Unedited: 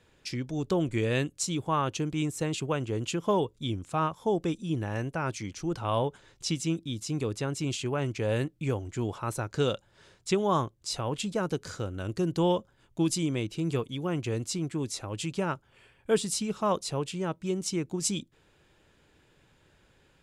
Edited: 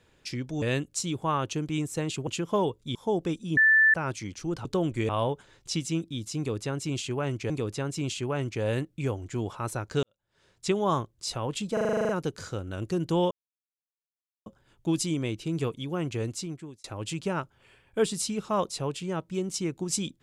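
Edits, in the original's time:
0.62–1.06 move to 5.84
2.71–3.02 cut
3.7–4.14 cut
4.76–5.13 bleep 1760 Hz -16 dBFS
7.13–8.25 loop, 2 plays
9.66–10.3 fade in quadratic
11.36 stutter 0.04 s, 10 plays
12.58 insert silence 1.15 s
14.38–14.96 fade out

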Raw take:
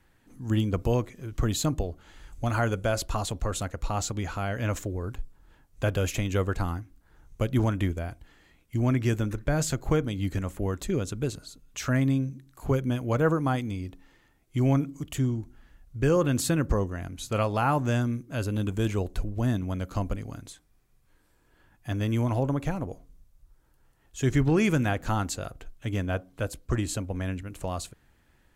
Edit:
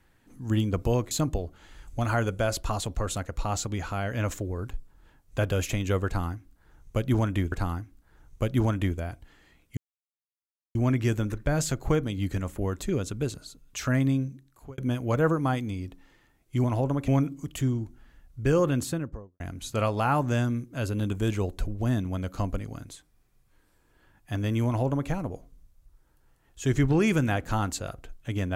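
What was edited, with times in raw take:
1.11–1.56 cut
6.51–7.97 loop, 2 plays
8.76 insert silence 0.98 s
12.23–12.79 fade out
16.16–16.97 studio fade out
22.23–22.67 copy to 14.65

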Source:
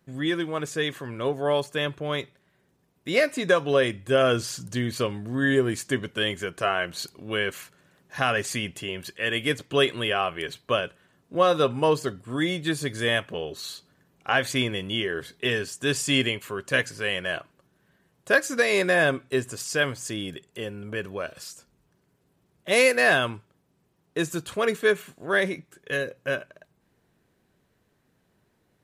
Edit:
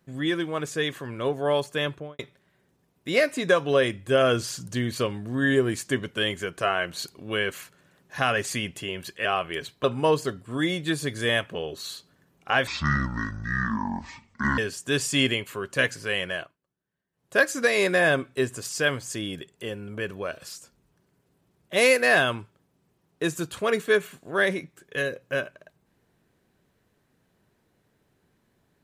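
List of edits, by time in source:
1.91–2.19 studio fade out
9.25–10.12 cut
10.71–11.63 cut
14.46–15.53 speed 56%
17.23–18.35 dip -20.5 dB, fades 0.28 s

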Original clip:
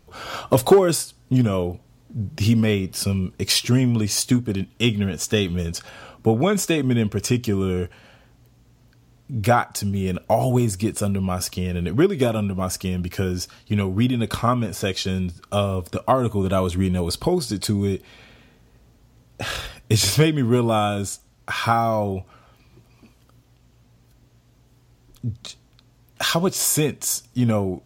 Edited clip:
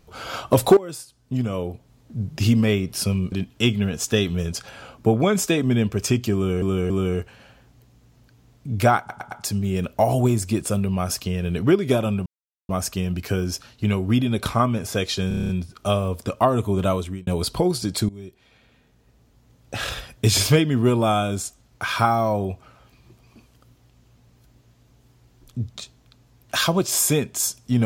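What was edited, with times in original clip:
0.77–2.21 fade in, from -18.5 dB
3.32–4.52 cut
7.54–7.82 loop, 3 plays
9.62 stutter 0.11 s, 4 plays
12.57 insert silence 0.43 s
15.16 stutter 0.03 s, 8 plays
16.53–16.94 fade out
17.76–19.6 fade in, from -19.5 dB

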